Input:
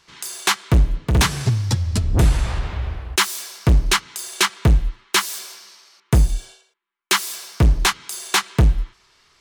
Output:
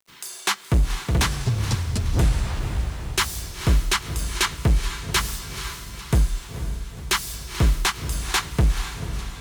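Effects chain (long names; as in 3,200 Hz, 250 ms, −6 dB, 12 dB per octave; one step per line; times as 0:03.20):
bit-depth reduction 8 bits, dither none
feedback delay with all-pass diffusion 486 ms, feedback 52%, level −9.5 dB
feedback echo with a swinging delay time 429 ms, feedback 54%, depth 214 cents, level −18 dB
level −4.5 dB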